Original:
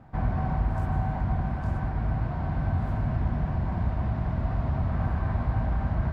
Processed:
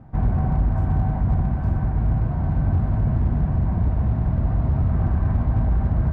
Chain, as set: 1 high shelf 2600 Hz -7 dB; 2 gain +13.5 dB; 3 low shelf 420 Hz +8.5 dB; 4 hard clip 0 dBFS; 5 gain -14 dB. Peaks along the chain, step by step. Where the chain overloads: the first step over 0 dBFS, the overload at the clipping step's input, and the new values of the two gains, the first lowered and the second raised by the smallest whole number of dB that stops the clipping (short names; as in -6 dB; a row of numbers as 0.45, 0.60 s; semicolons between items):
-15.5, -2.0, +6.0, 0.0, -14.0 dBFS; step 3, 6.0 dB; step 2 +7.5 dB, step 5 -8 dB